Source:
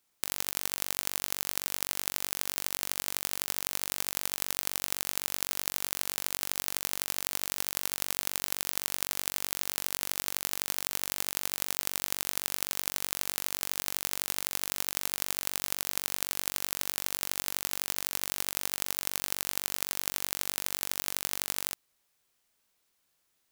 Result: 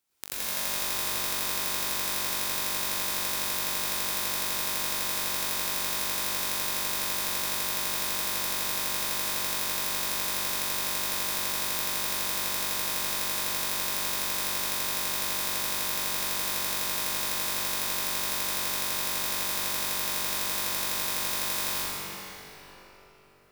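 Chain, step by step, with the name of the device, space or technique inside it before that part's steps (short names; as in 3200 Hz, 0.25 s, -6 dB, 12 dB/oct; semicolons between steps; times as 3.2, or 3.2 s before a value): cathedral (reverb RT60 4.3 s, pre-delay 80 ms, DRR -11.5 dB); gain -5.5 dB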